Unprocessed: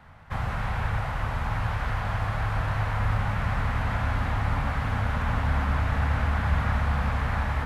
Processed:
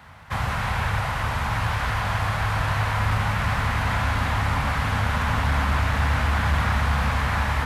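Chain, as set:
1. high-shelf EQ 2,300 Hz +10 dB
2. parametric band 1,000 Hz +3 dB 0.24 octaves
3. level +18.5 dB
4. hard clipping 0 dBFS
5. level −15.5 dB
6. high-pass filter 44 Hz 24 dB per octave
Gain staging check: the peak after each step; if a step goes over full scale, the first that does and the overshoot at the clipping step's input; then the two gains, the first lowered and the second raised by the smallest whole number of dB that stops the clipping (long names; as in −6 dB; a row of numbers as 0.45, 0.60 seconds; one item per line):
−12.0, −12.0, +6.5, 0.0, −15.5, −10.5 dBFS
step 3, 6.5 dB
step 3 +11.5 dB, step 5 −8.5 dB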